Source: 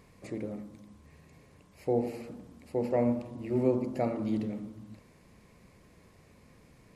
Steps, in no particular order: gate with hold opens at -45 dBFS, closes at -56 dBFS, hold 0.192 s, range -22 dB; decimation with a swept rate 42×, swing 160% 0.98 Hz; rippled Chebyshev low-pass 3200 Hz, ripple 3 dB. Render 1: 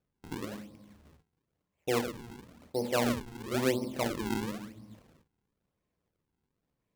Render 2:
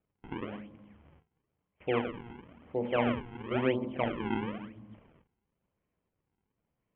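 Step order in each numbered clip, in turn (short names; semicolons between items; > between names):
rippled Chebyshev low-pass > decimation with a swept rate > gate with hold; decimation with a swept rate > rippled Chebyshev low-pass > gate with hold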